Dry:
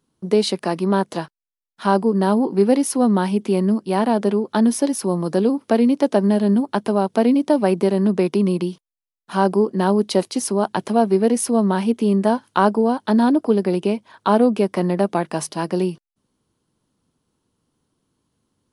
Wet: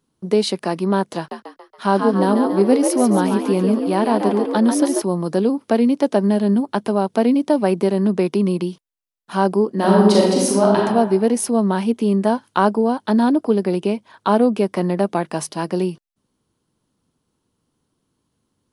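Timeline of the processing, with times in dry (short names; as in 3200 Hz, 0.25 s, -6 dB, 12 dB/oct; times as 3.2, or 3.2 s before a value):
1.17–5.02 frequency-shifting echo 0.14 s, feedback 49%, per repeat +65 Hz, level -5.5 dB
9.72–10.77 reverb throw, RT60 1.2 s, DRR -4 dB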